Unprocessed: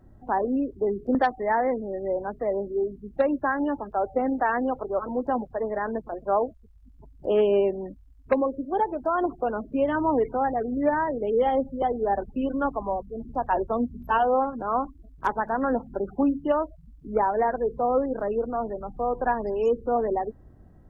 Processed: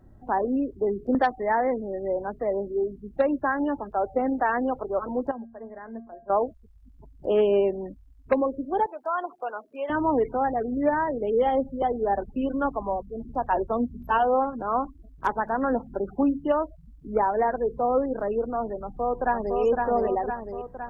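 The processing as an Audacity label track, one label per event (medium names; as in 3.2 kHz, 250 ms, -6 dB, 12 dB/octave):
5.310000	6.300000	feedback comb 230 Hz, decay 0.43 s, harmonics odd, mix 80%
8.860000	9.900000	high-pass 770 Hz
18.810000	19.590000	echo throw 510 ms, feedback 60%, level -3 dB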